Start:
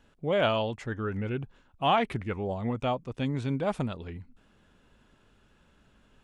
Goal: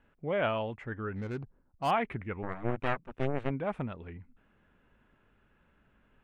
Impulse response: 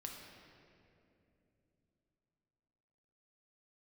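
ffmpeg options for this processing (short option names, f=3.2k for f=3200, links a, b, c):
-filter_complex "[0:a]asplit=3[a][b][c];[a]afade=t=out:st=2.42:d=0.02[d];[b]aeval=exprs='0.15*(cos(1*acos(clip(val(0)/0.15,-1,1)))-cos(1*PI/2))+0.0211*(cos(3*acos(clip(val(0)/0.15,-1,1)))-cos(3*PI/2))+0.0596*(cos(4*acos(clip(val(0)/0.15,-1,1)))-cos(4*PI/2))+0.00473*(cos(5*acos(clip(val(0)/0.15,-1,1)))-cos(5*PI/2))+0.0299*(cos(7*acos(clip(val(0)/0.15,-1,1)))-cos(7*PI/2))':c=same,afade=t=in:st=2.42:d=0.02,afade=t=out:st=3.49:d=0.02[e];[c]afade=t=in:st=3.49:d=0.02[f];[d][e][f]amix=inputs=3:normalize=0,highshelf=f=3.3k:t=q:w=1.5:g=-14,asettb=1/sr,asplit=3[g][h][i];[g]atrim=end=1.154[j];[h]atrim=start=1.15:end=1.91,asetpts=PTS-STARTPTS,afade=t=in:d=0.004:c=qsin,afade=t=out:st=0.756:d=0.004:c=qsin,adynamicsmooth=sensitivity=7:basefreq=610[k];[i]atrim=start=1.906[l];[j][k]acrossfade=d=0.004:c1=hsin:c2=qsin[m];[m][l]acrossfade=d=0.004:c1=qsin:c2=hsin,volume=-5dB"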